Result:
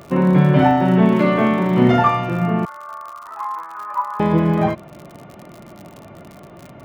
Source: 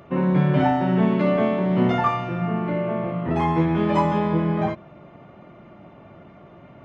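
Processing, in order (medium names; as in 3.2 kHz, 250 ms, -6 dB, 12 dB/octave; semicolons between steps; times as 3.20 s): 2.65–4.20 s: Butterworth band-pass 1.2 kHz, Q 2.7; crackle 68 per s -35 dBFS; 1.09–2.03 s: doubling 40 ms -6 dB; trim +5.5 dB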